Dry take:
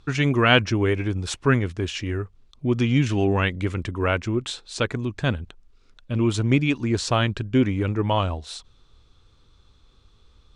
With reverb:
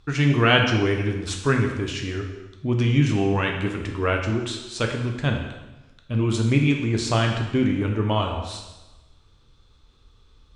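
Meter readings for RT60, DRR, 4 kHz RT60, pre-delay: 1.1 s, 1.5 dB, 1.0 s, 4 ms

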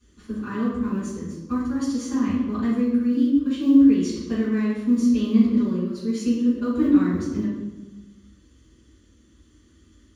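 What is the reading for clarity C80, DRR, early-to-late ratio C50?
3.0 dB, −13.5 dB, 0.0 dB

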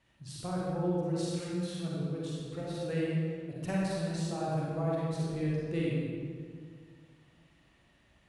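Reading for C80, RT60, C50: −1.0 dB, 1.9 s, −3.5 dB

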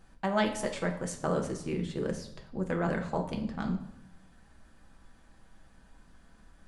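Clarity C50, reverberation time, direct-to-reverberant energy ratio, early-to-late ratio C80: 9.5 dB, 0.80 s, 1.5 dB, 12.0 dB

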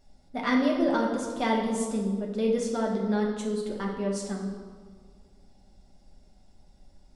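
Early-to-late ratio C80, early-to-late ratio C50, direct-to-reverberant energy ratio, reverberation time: 6.0 dB, 4.0 dB, −1.5 dB, 1.7 s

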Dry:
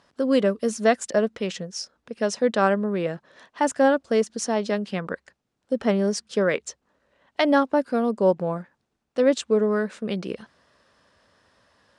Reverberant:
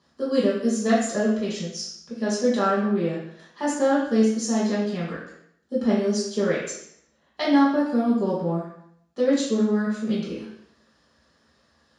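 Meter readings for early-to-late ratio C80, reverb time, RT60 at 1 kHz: 5.5 dB, 0.70 s, 0.70 s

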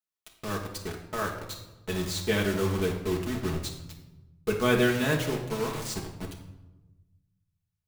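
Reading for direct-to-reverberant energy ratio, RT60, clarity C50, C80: −1.5 dB, 1.1 s, 6.5 dB, 9.5 dB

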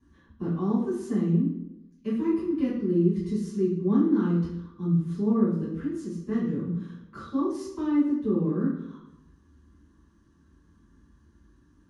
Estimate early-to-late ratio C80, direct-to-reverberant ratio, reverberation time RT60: 7.0 dB, −13.0 dB, 0.85 s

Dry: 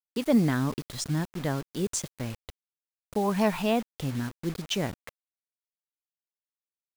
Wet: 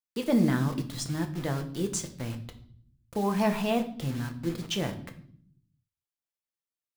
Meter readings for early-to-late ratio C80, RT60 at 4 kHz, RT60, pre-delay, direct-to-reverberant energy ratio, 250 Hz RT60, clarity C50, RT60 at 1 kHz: 16.0 dB, 0.55 s, 0.60 s, 6 ms, 5.0 dB, 1.1 s, 12.5 dB, 0.50 s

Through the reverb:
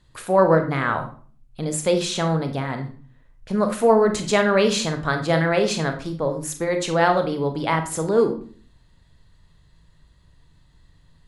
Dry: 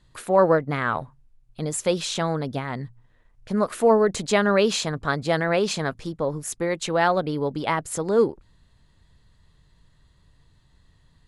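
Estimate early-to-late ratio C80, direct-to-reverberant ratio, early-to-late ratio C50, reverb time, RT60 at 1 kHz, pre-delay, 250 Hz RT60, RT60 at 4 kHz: 14.5 dB, 5.5 dB, 10.0 dB, 0.45 s, 0.40 s, 31 ms, 0.65 s, 0.35 s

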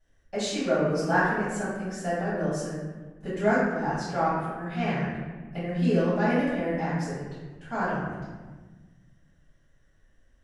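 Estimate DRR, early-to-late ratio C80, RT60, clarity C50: −13.0 dB, 1.5 dB, 1.3 s, −1.5 dB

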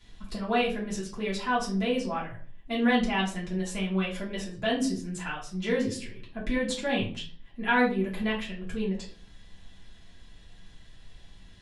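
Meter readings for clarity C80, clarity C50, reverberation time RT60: 13.5 dB, 8.0 dB, 0.45 s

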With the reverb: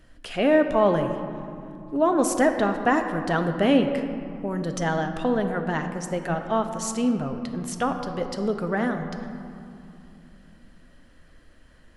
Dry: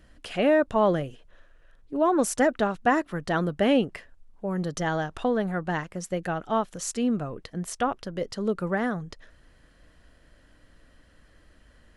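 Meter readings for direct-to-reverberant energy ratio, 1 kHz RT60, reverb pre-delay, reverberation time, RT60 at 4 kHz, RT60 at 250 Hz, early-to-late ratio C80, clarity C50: 6.0 dB, 2.8 s, 3 ms, 2.8 s, 1.3 s, 4.0 s, 8.0 dB, 7.0 dB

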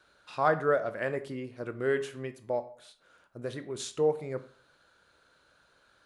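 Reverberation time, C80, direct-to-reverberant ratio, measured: 0.50 s, 18.5 dB, 10.0 dB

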